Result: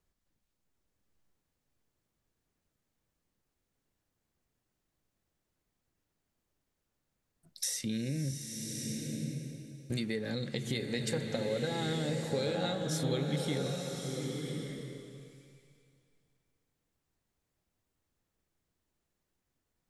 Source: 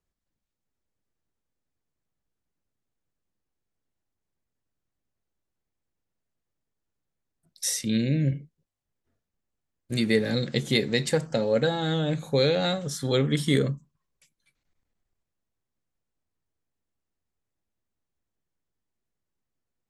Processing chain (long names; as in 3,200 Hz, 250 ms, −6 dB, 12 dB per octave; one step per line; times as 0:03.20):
in parallel at −2.5 dB: brickwall limiter −16 dBFS, peak gain reduction 8 dB
on the sum: downward compressor 5 to 1, threshold −32 dBFS, peak gain reduction 16 dB
slow-attack reverb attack 1,150 ms, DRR 2.5 dB
level −1.5 dB